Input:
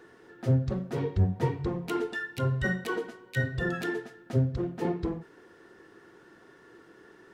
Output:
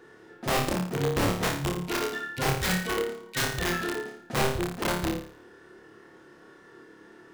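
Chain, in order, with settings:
wrap-around overflow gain 22 dB
flutter between parallel walls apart 4.8 metres, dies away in 0.52 s

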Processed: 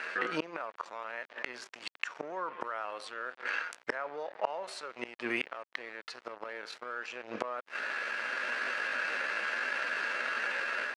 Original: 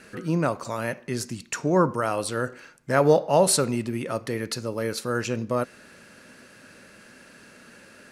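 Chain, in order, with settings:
tilt shelving filter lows −10 dB, about 640 Hz
leveller curve on the samples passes 1
automatic gain control gain up to 9.5 dB
tempo change 0.74×
gate with flip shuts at −15 dBFS, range −30 dB
dead-zone distortion −57.5 dBFS
band-pass filter 430–2,100 Hz
envelope flattener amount 50%

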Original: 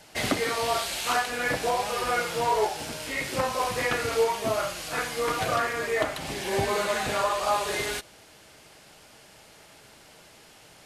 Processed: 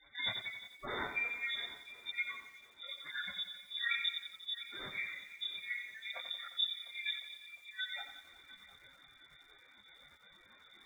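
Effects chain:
gate on every frequency bin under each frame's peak −10 dB strong
multi-voice chorus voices 4, 0.24 Hz, delay 24 ms, depth 1 ms
formants moved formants −5 semitones
brick-wall band-stop 130–1,200 Hz
voice inversion scrambler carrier 3,600 Hz
echo machine with several playback heads 352 ms, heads first and second, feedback 53%, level −20.5 dB
feedback echo at a low word length 89 ms, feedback 55%, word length 10 bits, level −8.5 dB

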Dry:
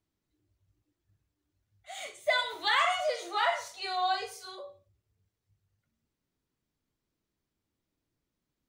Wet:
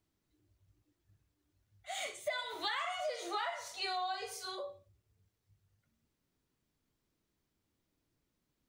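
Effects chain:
downward compressor 12 to 1, threshold −36 dBFS, peak gain reduction 14.5 dB
level +2 dB

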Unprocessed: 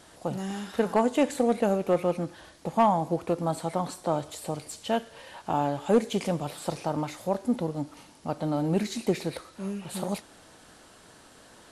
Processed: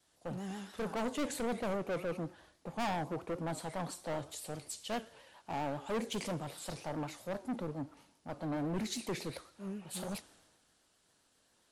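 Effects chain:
pitch vibrato 7.5 Hz 77 cents
hard clipping −27.5 dBFS, distortion −5 dB
multiband upward and downward expander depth 70%
level −5.5 dB

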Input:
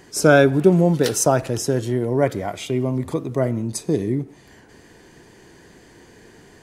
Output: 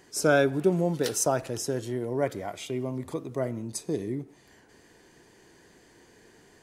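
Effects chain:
bass and treble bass −4 dB, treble +2 dB
level −8 dB

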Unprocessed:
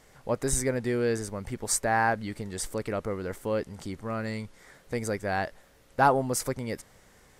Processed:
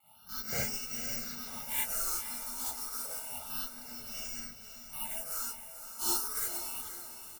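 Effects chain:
samples in bit-reversed order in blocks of 128 samples
graphic EQ with 10 bands 125 Hz −6 dB, 250 Hz −7 dB, 500 Hz +11 dB, 1,000 Hz +5 dB, 2,000 Hz −11 dB
pitch vibrato 1.2 Hz 26 cents
comb filter 1.4 ms, depth 87%
soft clipping −10.5 dBFS, distortion −23 dB
high-shelf EQ 3,500 Hz −7.5 dB
gate on every frequency bin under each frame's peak −15 dB weak
all-pass phaser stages 6, 0.3 Hz, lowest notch 140–1,100 Hz
on a send: feedback delay with all-pass diffusion 498 ms, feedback 44%, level −9 dB
on the sum: reverb whose tail is shaped and stops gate 90 ms rising, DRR −7.5 dB
level −3 dB

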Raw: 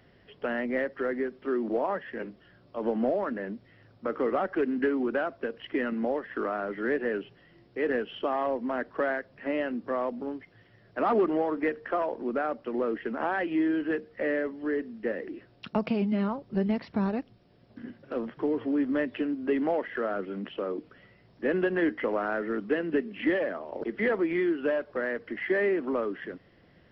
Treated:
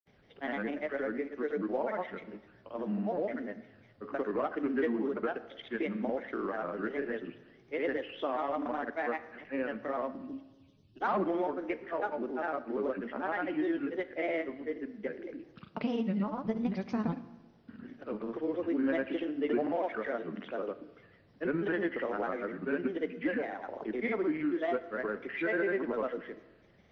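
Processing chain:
gain on a spectral selection 0:10.17–0:11.01, 390–2,500 Hz −25 dB
granular cloud, pitch spread up and down by 3 semitones
four-comb reverb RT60 1.2 s, combs from 26 ms, DRR 13.5 dB
level −3.5 dB

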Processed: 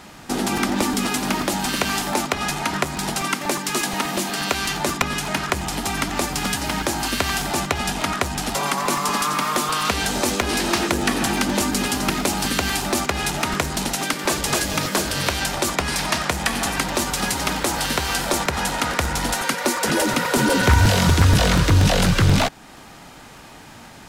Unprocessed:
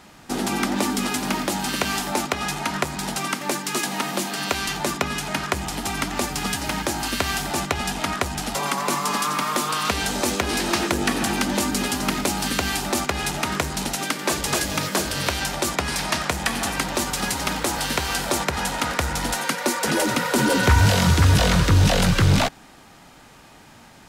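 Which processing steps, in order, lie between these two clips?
in parallel at −1 dB: downward compressor, threshold −33 dBFS, peak gain reduction 19.5 dB
on the sum: regular buffer underruns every 0.12 s, samples 128, repeat, from 0:00.57

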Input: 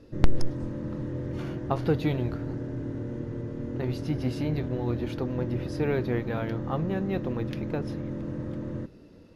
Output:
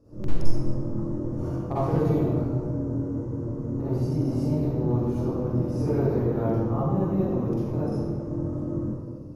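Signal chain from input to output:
flat-topped bell 2,600 Hz −15.5 dB
hard clipping −17 dBFS, distortion −10 dB
convolution reverb RT60 1.6 s, pre-delay 41 ms, DRR −10.5 dB
level −8 dB

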